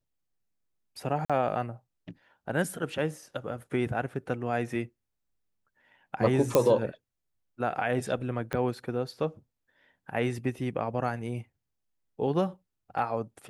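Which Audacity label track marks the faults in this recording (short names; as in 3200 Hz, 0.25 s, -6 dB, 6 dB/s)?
1.250000	1.300000	gap 46 ms
6.550000	6.550000	pop -8 dBFS
8.530000	8.530000	pop -17 dBFS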